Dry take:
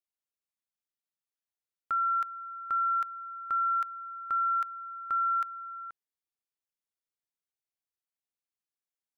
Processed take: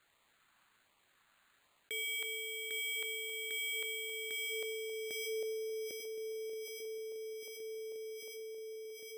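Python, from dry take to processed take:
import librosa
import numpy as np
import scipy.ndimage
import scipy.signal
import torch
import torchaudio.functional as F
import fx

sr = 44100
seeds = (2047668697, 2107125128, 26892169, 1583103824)

y = x * np.sin(2.0 * np.pi * 920.0 * np.arange(len(x)) / sr)
y = fx.echo_swing(y, sr, ms=1425, ratio=3, feedback_pct=45, wet_db=-19)
y = fx.transient(y, sr, attack_db=-4, sustain_db=6)
y = fx.filter_sweep_bandpass(y, sr, from_hz=1400.0, to_hz=470.0, start_s=4.0, end_s=5.66, q=1.5)
y = np.repeat(y[::8], 8)[:len(y)]
y = fx.filter_lfo_notch(y, sr, shape='sine', hz=1.3, low_hz=410.0, high_hz=1600.0, q=2.4)
y = fx.env_flatten(y, sr, amount_pct=70)
y = F.gain(torch.from_numpy(y), -2.0).numpy()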